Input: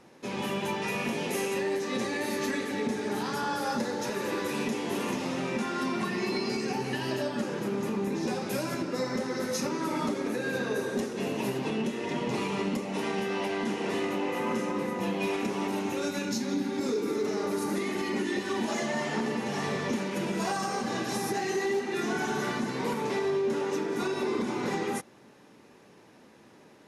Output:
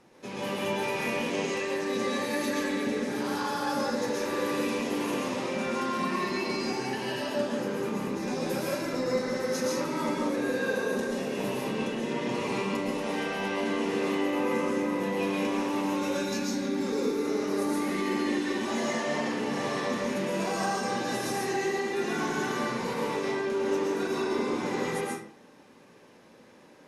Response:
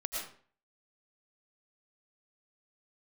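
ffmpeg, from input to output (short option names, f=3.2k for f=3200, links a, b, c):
-filter_complex "[0:a]asettb=1/sr,asplit=3[a][b][c];[a]atrim=end=1.164[d];[b]atrim=start=1.16:end=1.57,asetpts=PTS-STARTPTS,afade=t=in:d=0.004:c=qsin,afade=t=out:st=0.406:d=0.004:c=qsin,lowpass=f=7.1k:w=0.5412,lowpass=f=7.1k:w=1.3066[e];[c]atrim=start=1.566[f];[d][e]acrossfade=d=0.004:c1=hsin:c2=qsin[g];[g][f]acrossfade=d=0.004:c1=qsin:c2=hsin[h];[1:a]atrim=start_sample=2205,asetrate=36603,aresample=44100[i];[h][i]afir=irnorm=-1:irlink=0,volume=-3dB"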